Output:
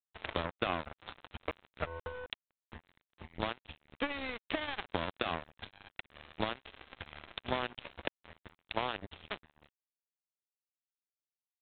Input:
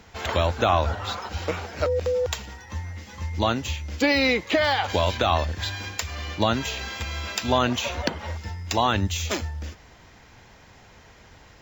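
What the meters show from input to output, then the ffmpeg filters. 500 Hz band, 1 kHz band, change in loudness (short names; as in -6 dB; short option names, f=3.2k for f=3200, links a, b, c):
-16.0 dB, -14.5 dB, -14.5 dB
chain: -af "adynamicequalizer=threshold=0.00708:dfrequency=130:dqfactor=1.2:tfrequency=130:tqfactor=1.2:attack=5:release=100:ratio=0.375:range=3:mode=cutabove:tftype=bell,acompressor=threshold=-39dB:ratio=2.5,aeval=exprs='val(0)+0.000562*(sin(2*PI*50*n/s)+sin(2*PI*2*50*n/s)/2+sin(2*PI*3*50*n/s)/3+sin(2*PI*4*50*n/s)/4+sin(2*PI*5*50*n/s)/5)':c=same,aeval=exprs='0.126*(cos(1*acos(clip(val(0)/0.126,-1,1)))-cos(1*PI/2))+0.001*(cos(2*acos(clip(val(0)/0.126,-1,1)))-cos(2*PI/2))+0.000794*(cos(5*acos(clip(val(0)/0.126,-1,1)))-cos(5*PI/2))+0.02*(cos(7*acos(clip(val(0)/0.126,-1,1)))-cos(7*PI/2))+0.00178*(cos(8*acos(clip(val(0)/0.126,-1,1)))-cos(8*PI/2))':c=same,aresample=8000,aeval=exprs='sgn(val(0))*max(abs(val(0))-0.0015,0)':c=same,aresample=44100,volume=4.5dB"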